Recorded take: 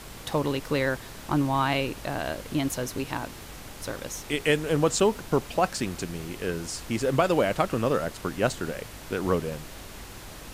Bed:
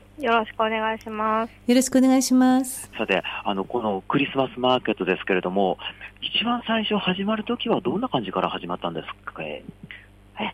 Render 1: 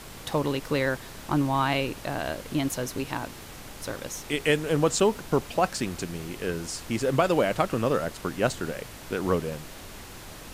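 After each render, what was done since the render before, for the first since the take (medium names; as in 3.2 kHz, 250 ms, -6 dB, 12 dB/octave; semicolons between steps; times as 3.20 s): de-hum 50 Hz, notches 2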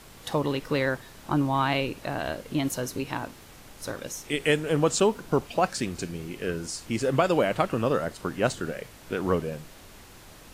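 noise print and reduce 6 dB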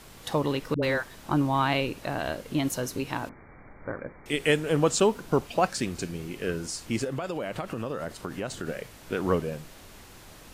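0.74–1.15 s: phase dispersion highs, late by 86 ms, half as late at 420 Hz; 3.29–4.26 s: brick-wall FIR low-pass 2.4 kHz; 7.04–8.68 s: compression 8:1, threshold -28 dBFS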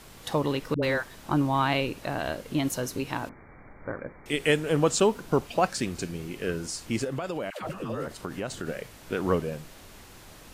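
7.50–8.07 s: phase dispersion lows, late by 120 ms, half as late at 580 Hz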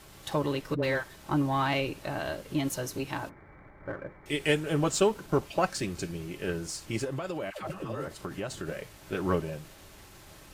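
partial rectifier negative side -3 dB; comb of notches 240 Hz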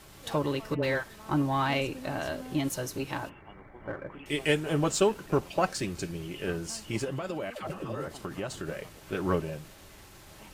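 add bed -26.5 dB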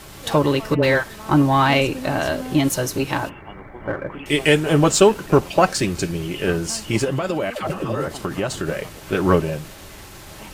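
trim +11.5 dB; peak limiter -2 dBFS, peak gain reduction 2.5 dB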